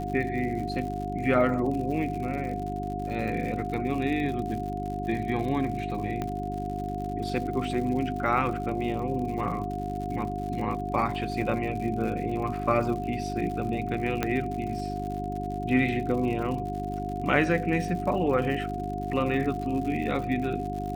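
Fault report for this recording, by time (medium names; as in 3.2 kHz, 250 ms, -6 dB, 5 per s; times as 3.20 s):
crackle 110 per s -35 dBFS
hum 50 Hz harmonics 8 -34 dBFS
whine 720 Hz -33 dBFS
6.22 s: pop -18 dBFS
14.23 s: pop -11 dBFS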